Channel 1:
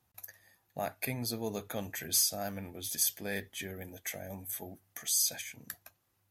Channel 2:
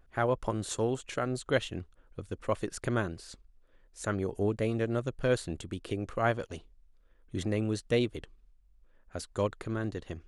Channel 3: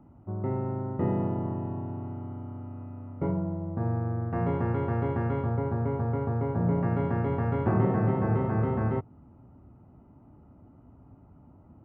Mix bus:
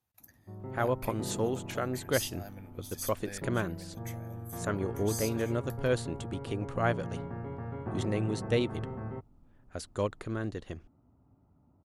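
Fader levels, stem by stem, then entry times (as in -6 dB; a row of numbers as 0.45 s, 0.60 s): -9.5 dB, -1.0 dB, -11.5 dB; 0.00 s, 0.60 s, 0.20 s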